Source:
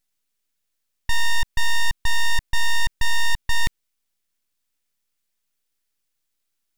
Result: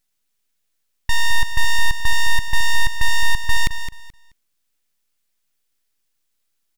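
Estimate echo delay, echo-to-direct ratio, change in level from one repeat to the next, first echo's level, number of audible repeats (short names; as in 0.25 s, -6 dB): 0.215 s, -10.0 dB, -13.0 dB, -10.0 dB, 2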